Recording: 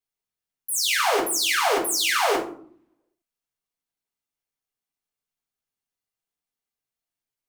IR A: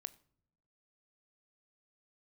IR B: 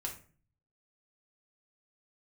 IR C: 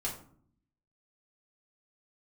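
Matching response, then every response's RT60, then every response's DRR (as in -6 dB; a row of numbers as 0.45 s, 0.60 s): C; no single decay rate, 0.40 s, 0.55 s; 13.5 dB, 0.0 dB, -4.0 dB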